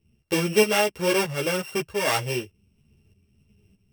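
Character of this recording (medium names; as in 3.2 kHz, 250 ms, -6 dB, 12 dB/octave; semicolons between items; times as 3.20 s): a buzz of ramps at a fixed pitch in blocks of 16 samples; tremolo saw up 1.6 Hz, depth 60%; a shimmering, thickened sound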